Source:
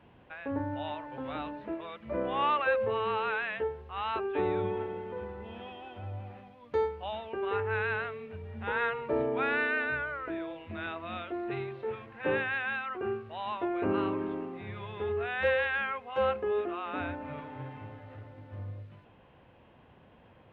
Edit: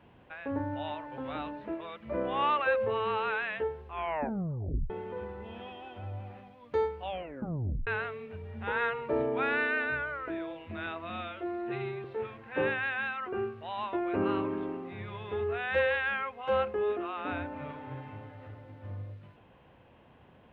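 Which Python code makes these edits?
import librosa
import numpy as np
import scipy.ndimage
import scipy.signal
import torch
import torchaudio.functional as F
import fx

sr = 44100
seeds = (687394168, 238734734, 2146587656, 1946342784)

y = fx.edit(x, sr, fx.tape_stop(start_s=3.85, length_s=1.05),
    fx.tape_stop(start_s=7.04, length_s=0.83),
    fx.stretch_span(start_s=11.1, length_s=0.63, factor=1.5), tone=tone)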